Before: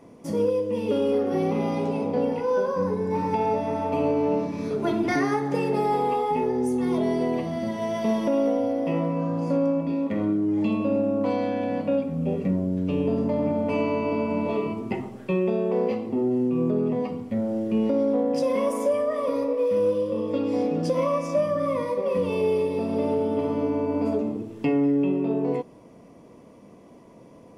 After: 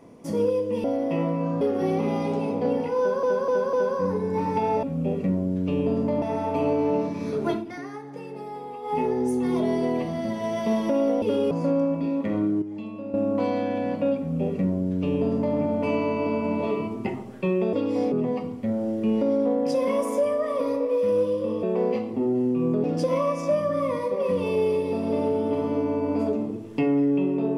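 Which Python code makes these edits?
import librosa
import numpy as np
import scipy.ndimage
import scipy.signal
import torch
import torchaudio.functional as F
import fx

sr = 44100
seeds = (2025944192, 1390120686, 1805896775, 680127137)

y = fx.edit(x, sr, fx.swap(start_s=0.84, length_s=0.29, other_s=8.6, other_length_s=0.77),
    fx.repeat(start_s=2.5, length_s=0.25, count=4),
    fx.fade_down_up(start_s=4.88, length_s=1.47, db=-13.0, fade_s=0.15),
    fx.clip_gain(start_s=10.48, length_s=0.52, db=-11.0),
    fx.duplicate(start_s=12.04, length_s=1.39, to_s=3.6),
    fx.swap(start_s=15.59, length_s=1.21, other_s=20.31, other_length_s=0.39), tone=tone)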